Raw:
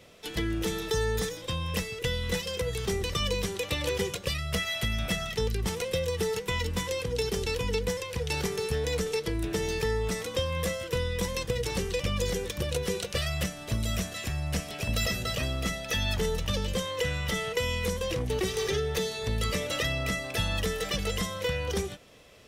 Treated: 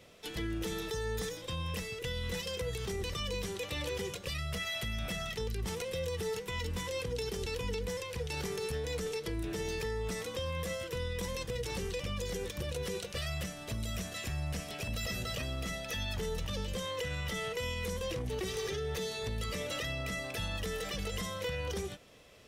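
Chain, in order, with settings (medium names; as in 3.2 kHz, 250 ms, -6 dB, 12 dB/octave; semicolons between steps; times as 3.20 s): peak limiter -24 dBFS, peak gain reduction 7.5 dB; trim -3.5 dB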